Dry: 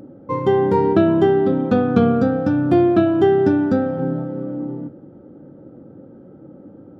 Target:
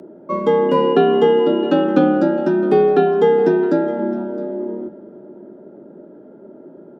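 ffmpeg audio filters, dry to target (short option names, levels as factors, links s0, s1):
-filter_complex "[0:a]asettb=1/sr,asplit=3[s0][s1][s2];[s0]atrim=end=0.694[s3];[s1]atrim=start=0.69:end=1.84,asetpts=PTS-STARTPTS,afade=t=in:d=0.004:c=qsin,afade=t=out:st=1.146:d=0.004:c=qsin,aeval=exprs='val(0)+0.0158*sin(2*PI*2800*n/s)':c=same[s4];[s2]atrim=start=1.836[s5];[s3][s4]acrossfade=d=0.004:c1=hsin:c2=qsin[s6];[s6][s5]acrossfade=d=0.004:c1=qsin:c2=hsin,aecho=1:1:663:0.133,afreqshift=69,volume=1.12"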